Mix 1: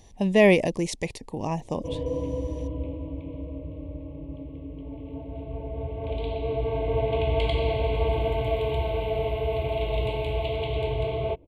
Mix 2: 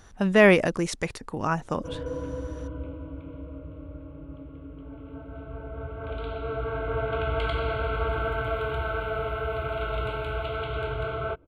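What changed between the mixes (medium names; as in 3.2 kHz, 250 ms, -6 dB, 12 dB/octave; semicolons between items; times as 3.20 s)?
background -4.0 dB; master: remove Butterworth band-stop 1.4 kHz, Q 1.3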